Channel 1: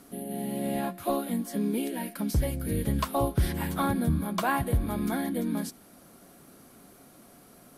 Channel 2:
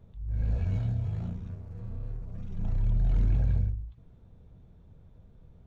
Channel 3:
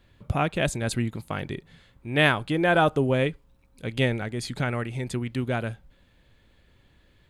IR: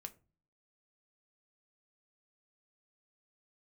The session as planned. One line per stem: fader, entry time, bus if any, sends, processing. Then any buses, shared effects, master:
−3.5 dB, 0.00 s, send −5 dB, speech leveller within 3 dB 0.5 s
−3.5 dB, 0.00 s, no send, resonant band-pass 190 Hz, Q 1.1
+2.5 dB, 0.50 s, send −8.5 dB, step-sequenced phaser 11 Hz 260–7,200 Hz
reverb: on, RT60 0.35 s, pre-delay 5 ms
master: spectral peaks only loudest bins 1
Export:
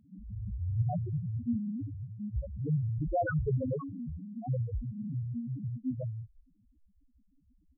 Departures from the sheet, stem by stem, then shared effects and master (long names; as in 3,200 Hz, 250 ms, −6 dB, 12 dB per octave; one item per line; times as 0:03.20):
stem 2 −3.5 dB → +7.0 dB
reverb return −6.5 dB